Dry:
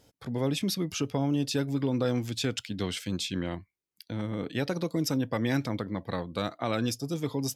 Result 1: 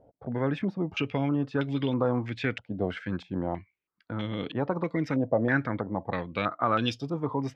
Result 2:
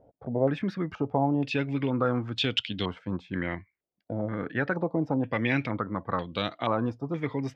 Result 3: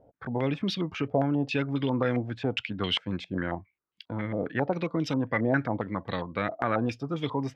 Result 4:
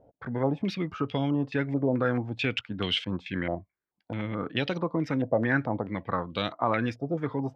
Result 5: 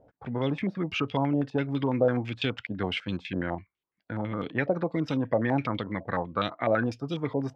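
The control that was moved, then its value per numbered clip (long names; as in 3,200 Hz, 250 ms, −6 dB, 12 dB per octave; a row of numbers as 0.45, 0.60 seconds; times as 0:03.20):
low-pass on a step sequencer, speed: 3.1, 2.1, 7.4, 4.6, 12 Hertz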